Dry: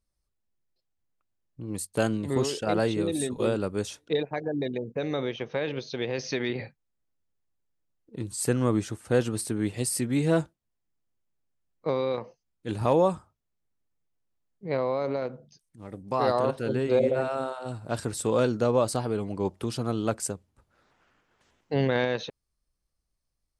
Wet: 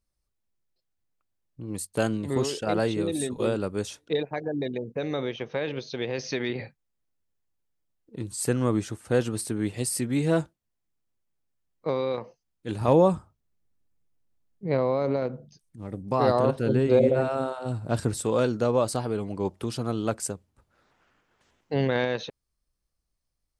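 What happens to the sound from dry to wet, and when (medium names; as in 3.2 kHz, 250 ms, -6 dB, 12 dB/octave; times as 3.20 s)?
12.88–18.20 s: bass shelf 380 Hz +7.5 dB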